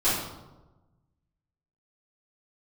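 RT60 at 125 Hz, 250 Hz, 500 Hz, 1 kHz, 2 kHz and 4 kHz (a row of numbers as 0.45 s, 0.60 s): 1.7 s, 1.3 s, 1.2 s, 1.0 s, 0.70 s, 0.65 s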